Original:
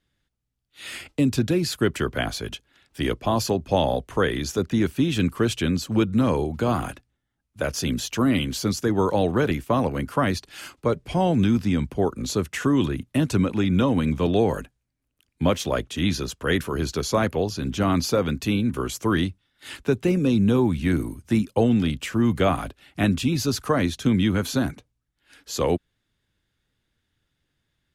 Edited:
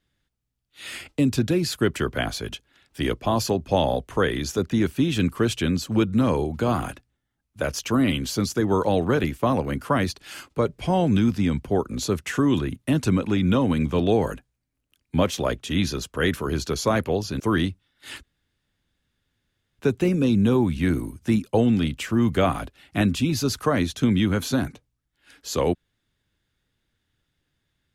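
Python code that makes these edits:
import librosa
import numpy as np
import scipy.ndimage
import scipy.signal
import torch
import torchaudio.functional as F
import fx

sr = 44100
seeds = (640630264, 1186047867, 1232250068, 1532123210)

y = fx.edit(x, sr, fx.cut(start_s=7.79, length_s=0.27),
    fx.cut(start_s=17.67, length_s=1.32),
    fx.insert_room_tone(at_s=19.82, length_s=1.56), tone=tone)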